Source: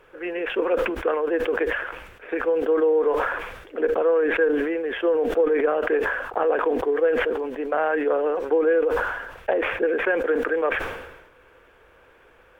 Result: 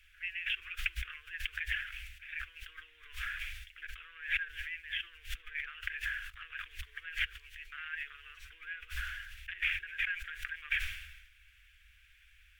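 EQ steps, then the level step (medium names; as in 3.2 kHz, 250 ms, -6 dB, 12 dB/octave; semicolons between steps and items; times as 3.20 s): inverse Chebyshev band-stop 160–920 Hz, stop band 50 dB; peaking EQ 590 Hz -7.5 dB 1 oct; 0.0 dB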